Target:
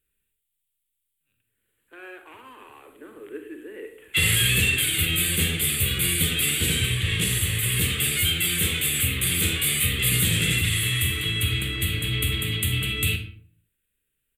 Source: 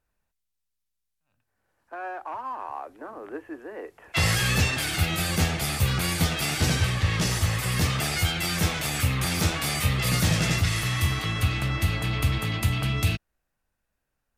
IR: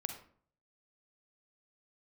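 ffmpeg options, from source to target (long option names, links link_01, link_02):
-filter_complex "[0:a]firequalizer=gain_entry='entry(270,0);entry(430,5);entry(680,-18);entry(1400,-3);entry(2000,5);entry(3300,12);entry(5400,-14);entry(7900,12);entry(13000,14)':delay=0.05:min_phase=1[link_01];[1:a]atrim=start_sample=2205[link_02];[link_01][link_02]afir=irnorm=-1:irlink=0,volume=-2.5dB"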